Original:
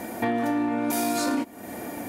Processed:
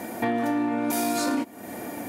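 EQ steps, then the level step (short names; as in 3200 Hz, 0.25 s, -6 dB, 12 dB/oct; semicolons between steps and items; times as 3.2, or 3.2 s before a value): HPF 82 Hz; 0.0 dB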